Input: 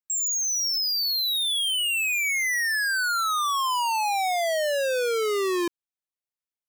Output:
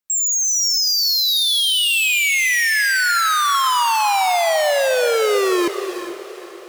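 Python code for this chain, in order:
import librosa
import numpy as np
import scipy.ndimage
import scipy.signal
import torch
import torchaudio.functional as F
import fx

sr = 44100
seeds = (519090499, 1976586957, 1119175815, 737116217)

p1 = x + fx.echo_diffused(x, sr, ms=453, feedback_pct=53, wet_db=-14, dry=0)
p2 = fx.rev_gated(p1, sr, seeds[0], gate_ms=450, shape='rising', drr_db=9.5)
y = p2 * librosa.db_to_amplitude(7.0)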